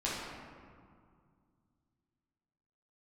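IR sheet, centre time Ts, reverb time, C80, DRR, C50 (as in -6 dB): 114 ms, 2.1 s, 1.0 dB, -8.0 dB, -1.5 dB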